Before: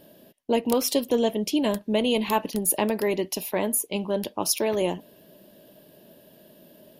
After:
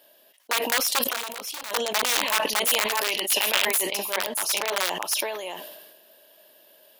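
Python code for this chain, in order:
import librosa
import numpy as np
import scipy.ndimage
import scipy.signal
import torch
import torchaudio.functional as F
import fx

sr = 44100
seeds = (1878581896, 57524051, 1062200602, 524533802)

y = x + 10.0 ** (-3.0 / 20.0) * np.pad(x, (int(620 * sr / 1000.0), 0))[:len(x)]
y = (np.mod(10.0 ** (15.5 / 20.0) * y + 1.0, 2.0) - 1.0) / 10.0 ** (15.5 / 20.0)
y = fx.level_steps(y, sr, step_db=17, at=(1.02, 1.7), fade=0.02)
y = fx.peak_eq(y, sr, hz=2900.0, db=9.5, octaves=0.71, at=(3.08, 3.67))
y = scipy.signal.sosfilt(scipy.signal.butter(2, 860.0, 'highpass', fs=sr, output='sos'), y)
y = fx.high_shelf(y, sr, hz=11000.0, db=-5.5, at=(4.27, 4.67))
y = fx.sustainer(y, sr, db_per_s=42.0)
y = y * librosa.db_to_amplitude(1.0)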